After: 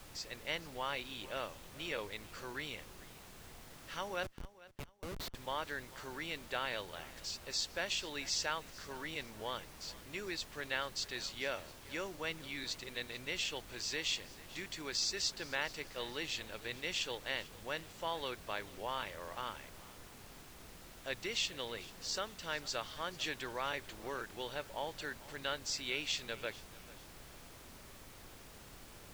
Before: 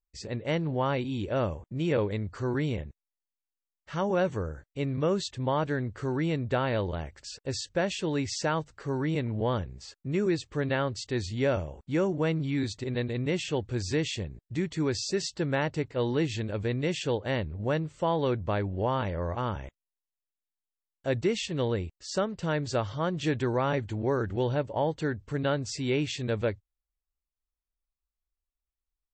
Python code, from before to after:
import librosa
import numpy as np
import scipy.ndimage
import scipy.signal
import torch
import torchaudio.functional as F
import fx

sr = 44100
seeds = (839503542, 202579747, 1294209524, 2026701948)

p1 = scipy.signal.sosfilt(scipy.signal.butter(2, 4300.0, 'lowpass', fs=sr, output='sos'), x)
p2 = np.diff(p1, prepend=0.0)
p3 = fx.dmg_noise_colour(p2, sr, seeds[0], colour='pink', level_db=-62.0)
p4 = fx.schmitt(p3, sr, flips_db=-46.5, at=(4.23, 5.35))
p5 = p4 + fx.echo_feedback(p4, sr, ms=442, feedback_pct=35, wet_db=-19.5, dry=0)
y = F.gain(torch.from_numpy(p5), 8.0).numpy()